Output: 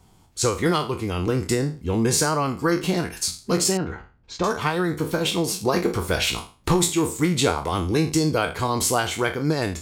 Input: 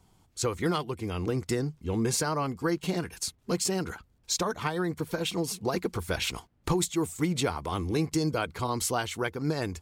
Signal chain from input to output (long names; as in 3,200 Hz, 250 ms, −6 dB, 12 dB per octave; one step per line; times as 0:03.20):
peak hold with a decay on every bin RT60 0.35 s
0:03.77–0:04.44: head-to-tape spacing loss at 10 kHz 32 dB
level +6 dB